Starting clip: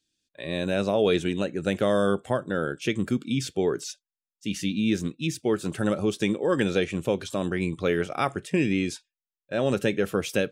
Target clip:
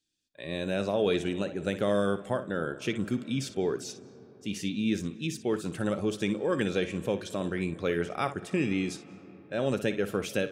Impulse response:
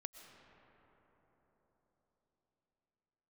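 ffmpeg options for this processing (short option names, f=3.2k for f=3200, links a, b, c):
-filter_complex "[0:a]asplit=2[a][b];[1:a]atrim=start_sample=2205,lowpass=7.5k,adelay=59[c];[b][c]afir=irnorm=-1:irlink=0,volume=-7dB[d];[a][d]amix=inputs=2:normalize=0,volume=-4.5dB"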